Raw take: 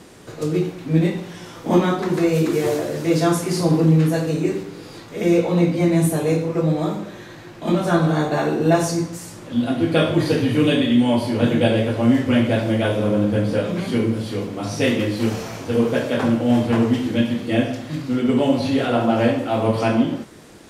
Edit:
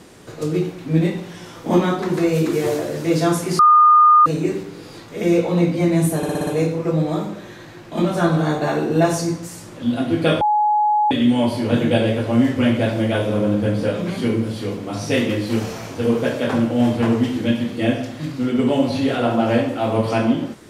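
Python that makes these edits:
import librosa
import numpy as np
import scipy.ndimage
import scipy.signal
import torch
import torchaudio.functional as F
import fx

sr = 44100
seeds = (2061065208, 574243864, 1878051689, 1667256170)

y = fx.edit(x, sr, fx.bleep(start_s=3.59, length_s=0.67, hz=1220.0, db=-7.5),
    fx.stutter(start_s=6.17, slice_s=0.06, count=6),
    fx.bleep(start_s=10.11, length_s=0.7, hz=842.0, db=-13.5), tone=tone)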